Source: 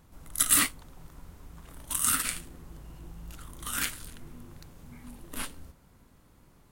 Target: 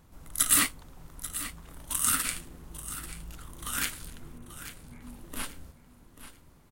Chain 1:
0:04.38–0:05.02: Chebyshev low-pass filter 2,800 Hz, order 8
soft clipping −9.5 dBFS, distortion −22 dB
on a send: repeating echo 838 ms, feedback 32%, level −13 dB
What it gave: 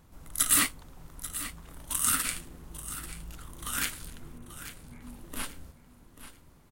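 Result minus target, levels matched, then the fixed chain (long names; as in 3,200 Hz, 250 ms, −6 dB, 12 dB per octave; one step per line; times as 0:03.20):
soft clipping: distortion +15 dB
0:04.38–0:05.02: Chebyshev low-pass filter 2,800 Hz, order 8
soft clipping −0.5 dBFS, distortion −36 dB
on a send: repeating echo 838 ms, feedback 32%, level −13 dB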